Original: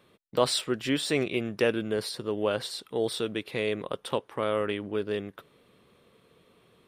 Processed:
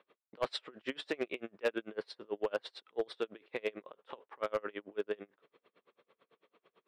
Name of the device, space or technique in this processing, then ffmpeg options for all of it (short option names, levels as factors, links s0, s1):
helicopter radio: -af "highpass=400,lowpass=2600,aeval=exprs='val(0)*pow(10,-33*(0.5-0.5*cos(2*PI*9*n/s))/20)':c=same,asoftclip=type=hard:threshold=0.0562,volume=1.12"